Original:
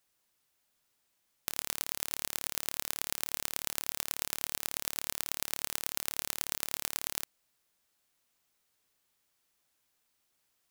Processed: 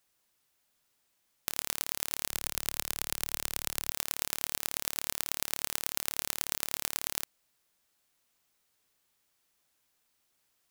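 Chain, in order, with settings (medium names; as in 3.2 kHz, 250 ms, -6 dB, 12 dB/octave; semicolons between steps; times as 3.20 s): 2.30–3.90 s: bass shelf 98 Hz +10.5 dB; trim +1.5 dB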